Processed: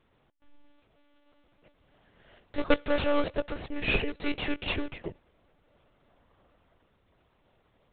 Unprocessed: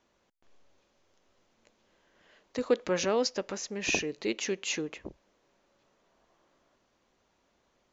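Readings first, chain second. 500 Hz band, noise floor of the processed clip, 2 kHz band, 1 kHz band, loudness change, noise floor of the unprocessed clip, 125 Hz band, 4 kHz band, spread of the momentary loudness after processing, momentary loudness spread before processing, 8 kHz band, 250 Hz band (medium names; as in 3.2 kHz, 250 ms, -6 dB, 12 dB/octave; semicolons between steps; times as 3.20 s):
-0.5 dB, -69 dBFS, +2.5 dB, +3.0 dB, 0.0 dB, -73 dBFS, +5.5 dB, -0.5 dB, 12 LU, 12 LU, no reading, +2.5 dB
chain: dynamic bell 300 Hz, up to -4 dB, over -41 dBFS, Q 1.3; in parallel at -5 dB: decimation with a swept rate 34×, swing 100% 2.9 Hz; on the sum: monotone LPC vocoder at 8 kHz 290 Hz; trim +2.5 dB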